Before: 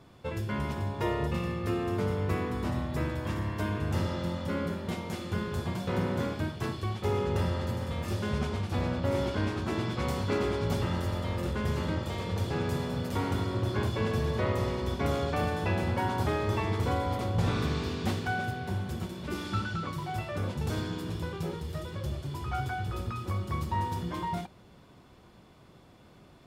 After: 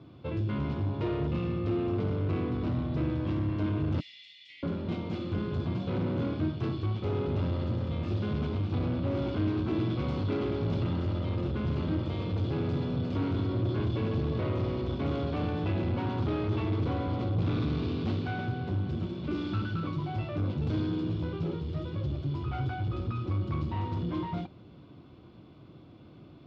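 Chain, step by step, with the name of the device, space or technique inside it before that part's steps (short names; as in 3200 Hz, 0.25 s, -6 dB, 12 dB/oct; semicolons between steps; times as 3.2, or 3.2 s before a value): 4–4.63 Chebyshev high-pass 1900 Hz, order 8; guitar amplifier (tube stage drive 30 dB, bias 0.25; tone controls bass +9 dB, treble 0 dB; speaker cabinet 96–4200 Hz, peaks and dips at 190 Hz -4 dB, 310 Hz +8 dB, 880 Hz -4 dB, 1800 Hz -9 dB)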